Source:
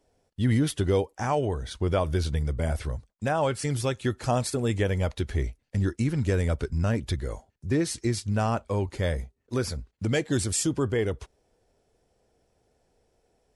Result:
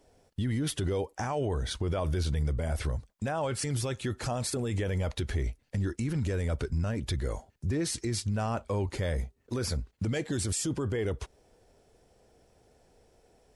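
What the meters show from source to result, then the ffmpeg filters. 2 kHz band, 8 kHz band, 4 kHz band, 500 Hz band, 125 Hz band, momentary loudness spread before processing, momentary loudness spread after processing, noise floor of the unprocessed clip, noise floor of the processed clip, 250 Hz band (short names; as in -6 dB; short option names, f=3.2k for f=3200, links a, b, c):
-5.0 dB, -2.5 dB, -2.0 dB, -5.5 dB, -3.5 dB, 7 LU, 5 LU, -75 dBFS, -70 dBFS, -5.0 dB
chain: -filter_complex "[0:a]asplit=2[a][b];[b]acompressor=threshold=-38dB:ratio=6,volume=0dB[c];[a][c]amix=inputs=2:normalize=0,alimiter=limit=-23dB:level=0:latency=1:release=28"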